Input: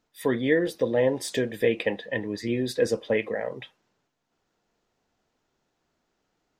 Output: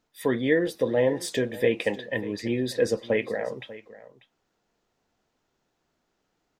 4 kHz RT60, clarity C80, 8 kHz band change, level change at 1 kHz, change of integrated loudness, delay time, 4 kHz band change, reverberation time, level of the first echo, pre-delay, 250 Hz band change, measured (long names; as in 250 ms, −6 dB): no reverb audible, no reverb audible, 0.0 dB, 0.0 dB, 0.0 dB, 592 ms, 0.0 dB, no reverb audible, −17.5 dB, no reverb audible, 0.0 dB